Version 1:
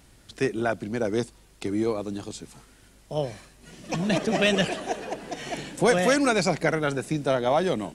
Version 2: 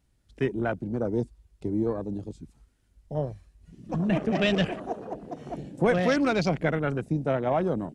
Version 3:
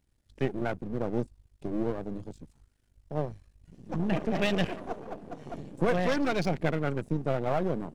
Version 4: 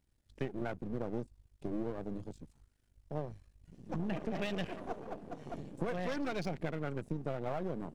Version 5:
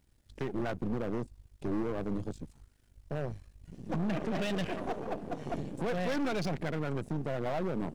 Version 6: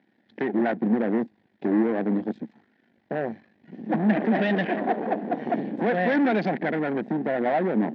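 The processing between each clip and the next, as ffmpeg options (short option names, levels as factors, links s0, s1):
-af "afwtdn=0.02,lowshelf=f=200:g=9.5,volume=0.631"
-af "aeval=exprs='if(lt(val(0),0),0.251*val(0),val(0))':c=same,bandreject=f=1300:w=26"
-af "acompressor=threshold=0.0398:ratio=6,volume=0.668"
-filter_complex "[0:a]asplit=2[s0][s1];[s1]alimiter=level_in=1.78:limit=0.0631:level=0:latency=1,volume=0.562,volume=1.41[s2];[s0][s2]amix=inputs=2:normalize=0,volume=20,asoftclip=hard,volume=0.0501"
-af "highpass=f=200:w=0.5412,highpass=f=200:w=1.3066,equalizer=f=220:t=q:w=4:g=8,equalizer=f=320:t=q:w=4:g=3,equalizer=f=760:t=q:w=4:g=6,equalizer=f=1200:t=q:w=4:g=-8,equalizer=f=1800:t=q:w=4:g=9,equalizer=f=2800:t=q:w=4:g=-5,lowpass=f=3300:w=0.5412,lowpass=f=3300:w=1.3066,volume=2.51"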